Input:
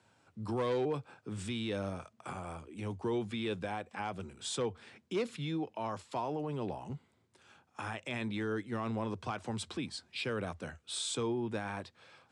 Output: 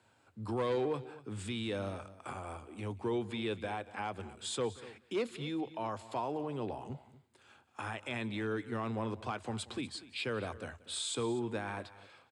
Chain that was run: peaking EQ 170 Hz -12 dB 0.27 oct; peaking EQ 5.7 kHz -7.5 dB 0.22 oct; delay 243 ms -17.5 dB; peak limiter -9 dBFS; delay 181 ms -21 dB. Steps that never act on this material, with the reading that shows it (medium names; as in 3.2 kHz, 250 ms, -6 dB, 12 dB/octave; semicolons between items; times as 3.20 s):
peak limiter -9 dBFS: peak at its input -23.5 dBFS